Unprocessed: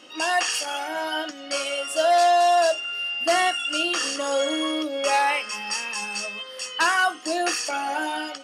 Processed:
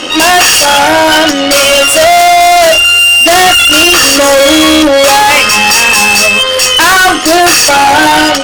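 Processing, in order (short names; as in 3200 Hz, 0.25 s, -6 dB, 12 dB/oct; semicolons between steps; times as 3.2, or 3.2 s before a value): AM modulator 89 Hz, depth 25%; tube stage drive 37 dB, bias 0.35; maximiser +34.5 dB; gain -1 dB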